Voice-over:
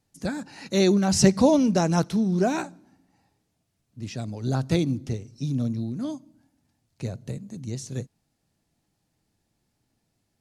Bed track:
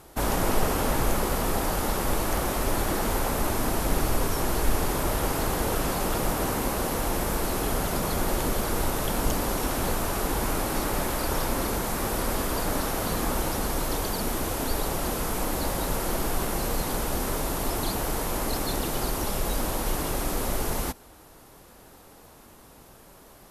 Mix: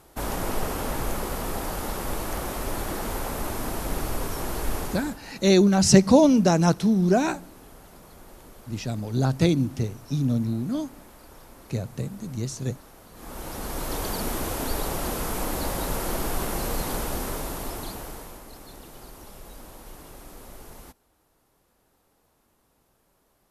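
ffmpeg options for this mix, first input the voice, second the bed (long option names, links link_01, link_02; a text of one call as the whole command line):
ffmpeg -i stem1.wav -i stem2.wav -filter_complex "[0:a]adelay=4700,volume=2.5dB[link_01];[1:a]volume=17dB,afade=type=out:start_time=4.78:duration=0.41:silence=0.133352,afade=type=in:start_time=13.13:duration=0.97:silence=0.0891251,afade=type=out:start_time=16.94:duration=1.49:silence=0.158489[link_02];[link_01][link_02]amix=inputs=2:normalize=0" out.wav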